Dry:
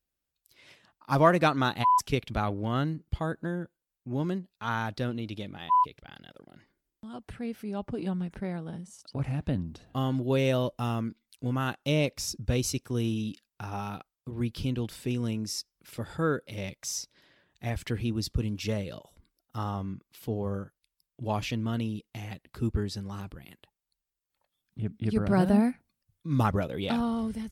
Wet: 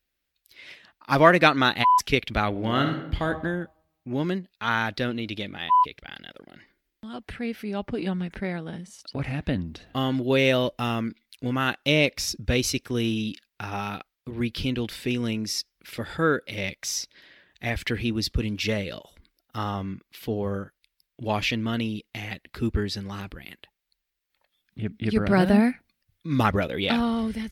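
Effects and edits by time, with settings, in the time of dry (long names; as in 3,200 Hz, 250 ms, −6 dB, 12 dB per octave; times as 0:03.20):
0:02.49–0:03.25: thrown reverb, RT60 0.82 s, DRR 4 dB
whole clip: octave-band graphic EQ 125/1,000/2,000/4,000/8,000 Hz −6/−3/+7/+4/−5 dB; level +5.5 dB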